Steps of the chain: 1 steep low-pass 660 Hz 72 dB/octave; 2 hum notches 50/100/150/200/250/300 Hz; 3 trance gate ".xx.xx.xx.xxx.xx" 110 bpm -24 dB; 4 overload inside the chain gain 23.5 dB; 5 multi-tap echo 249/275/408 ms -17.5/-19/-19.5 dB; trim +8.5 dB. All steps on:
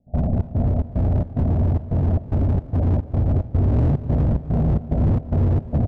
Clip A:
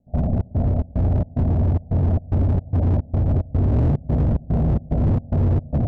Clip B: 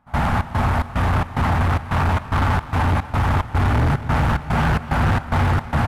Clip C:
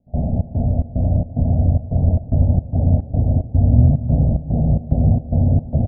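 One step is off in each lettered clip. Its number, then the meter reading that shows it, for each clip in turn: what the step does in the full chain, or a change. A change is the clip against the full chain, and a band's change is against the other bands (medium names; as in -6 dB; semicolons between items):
5, echo-to-direct -14.0 dB to none; 1, 1 kHz band +16.0 dB; 4, distortion -9 dB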